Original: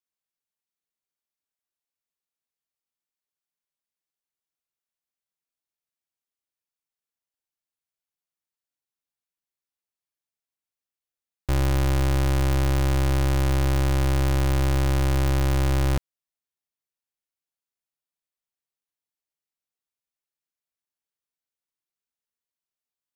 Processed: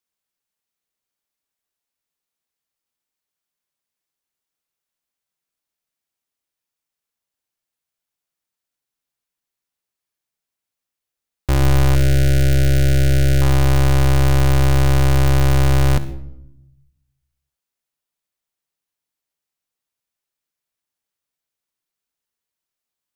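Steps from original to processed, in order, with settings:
0:11.95–0:13.42: elliptic band-stop filter 690–1,400 Hz, stop band 40 dB
convolution reverb RT60 0.85 s, pre-delay 66 ms, DRR 12.5 dB
level +6.5 dB

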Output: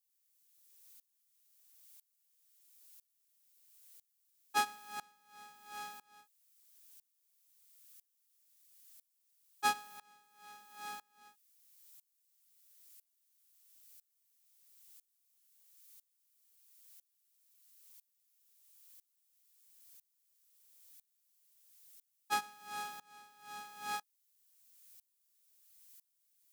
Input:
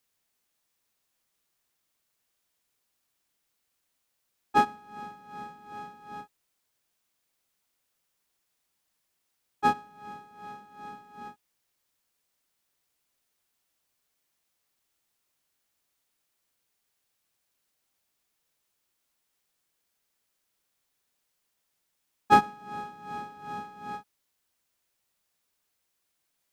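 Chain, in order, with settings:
first-order pre-emphasis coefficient 0.97
tremolo with a ramp in dB swelling 1 Hz, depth 25 dB
level +17.5 dB

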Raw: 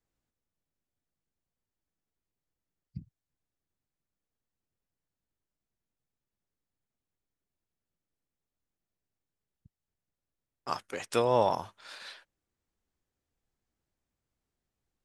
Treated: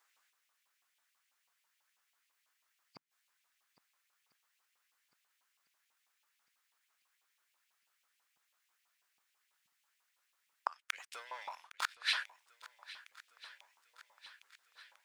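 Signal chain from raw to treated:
0:10.83–0:11.94: leveller curve on the samples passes 3
gate with flip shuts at −31 dBFS, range −37 dB
feedback echo with a long and a short gap by turns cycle 1,351 ms, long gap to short 1.5 to 1, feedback 57%, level −18 dB
auto-filter high-pass saw up 6.1 Hz 940–2,700 Hz
level +13 dB

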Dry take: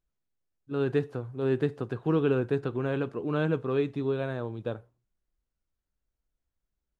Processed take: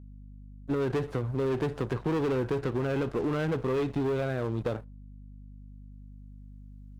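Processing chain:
camcorder AGC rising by 6.8 dB per second
leveller curve on the samples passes 3
mains hum 50 Hz, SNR 20 dB
harmonic generator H 6 −24 dB, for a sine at −13.5 dBFS
downward compressor, threshold −23 dBFS, peak gain reduction 6 dB
level −3 dB

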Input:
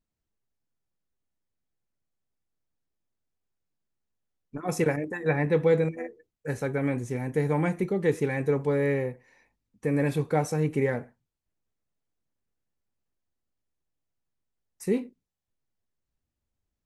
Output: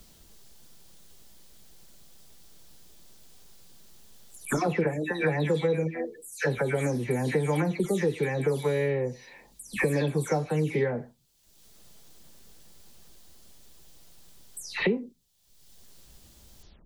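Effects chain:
every frequency bin delayed by itself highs early, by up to 234 ms
high shelf with overshoot 2,800 Hz +6 dB, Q 1.5
multiband upward and downward compressor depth 100%

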